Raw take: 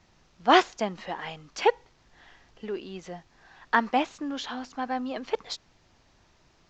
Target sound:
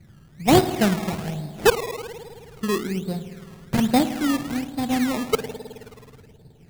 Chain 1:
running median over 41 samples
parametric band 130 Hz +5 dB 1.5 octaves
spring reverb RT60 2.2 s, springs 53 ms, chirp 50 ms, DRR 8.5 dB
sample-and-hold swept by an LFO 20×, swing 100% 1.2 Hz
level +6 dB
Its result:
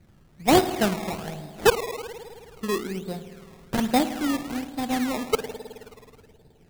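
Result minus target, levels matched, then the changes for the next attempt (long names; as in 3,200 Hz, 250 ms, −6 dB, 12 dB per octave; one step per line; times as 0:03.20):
125 Hz band −4.5 dB
change: parametric band 130 Hz +15 dB 1.5 octaves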